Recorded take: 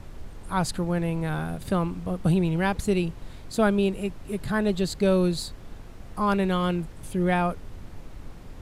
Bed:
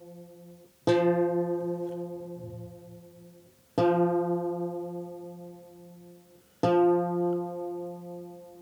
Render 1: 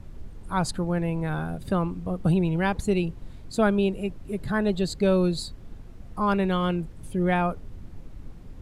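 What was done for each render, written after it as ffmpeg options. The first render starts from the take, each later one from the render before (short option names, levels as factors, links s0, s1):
-af "afftdn=nr=8:nf=-42"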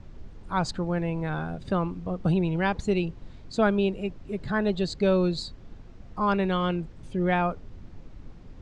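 -af "lowpass=f=6600:w=0.5412,lowpass=f=6600:w=1.3066,lowshelf=f=210:g=-3.5"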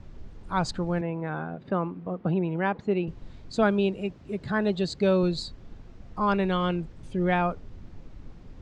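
-filter_complex "[0:a]asettb=1/sr,asplit=3[s0][s1][s2];[s0]atrim=end=1.014[s3];[s1]atrim=start=1.01:end=3.08,asetpts=PTS-STARTPTS,afade=t=in:d=0.004:c=qsin,afade=t=out:st=2.066:d=0.004:c=qsin,highpass=170,lowpass=2100[s4];[s2]atrim=start=3.076[s5];[s3][s4]acrossfade=d=0.004:c1=hsin:c2=qsin[s6];[s6][s5]acrossfade=d=0.004:c1=qsin:c2=hsin,asettb=1/sr,asplit=3[s7][s8][s9];[s7]atrim=end=3.634[s10];[s8]atrim=start=3.63:end=5.23,asetpts=PTS-STARTPTS,afade=t=in:d=0.004:c=qsin,afade=t=out:st=1.596:d=0.004:c=qsin,highpass=65[s11];[s9]atrim=start=5.226[s12];[s10][s11]acrossfade=d=0.004:c1=hsin:c2=qsin[s13];[s13][s12]acrossfade=d=0.004:c1=qsin:c2=hsin"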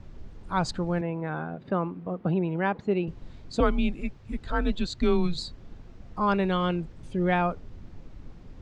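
-filter_complex "[0:a]asettb=1/sr,asplit=3[s0][s1][s2];[s0]atrim=end=3.604[s3];[s1]atrim=start=3.6:end=5.38,asetpts=PTS-STARTPTS,afade=t=in:d=0.004:c=qsin,afade=t=out:st=1.776:d=0.004:c=qsin,afreqshift=-170[s4];[s2]atrim=start=5.376[s5];[s3][s4]acrossfade=d=0.004:c1=hsin:c2=qsin[s6];[s6][s5]acrossfade=d=0.004:c1=qsin:c2=hsin"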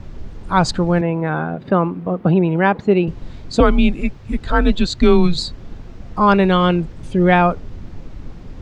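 -af "volume=3.76,alimiter=limit=0.891:level=0:latency=1"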